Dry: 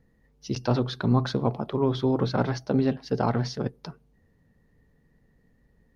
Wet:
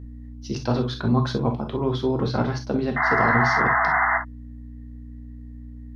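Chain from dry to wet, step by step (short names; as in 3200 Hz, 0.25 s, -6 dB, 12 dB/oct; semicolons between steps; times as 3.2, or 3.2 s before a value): painted sound noise, 2.96–4.18, 640–2100 Hz -22 dBFS; hum 60 Hz, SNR 14 dB; non-linear reverb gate 80 ms flat, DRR 4 dB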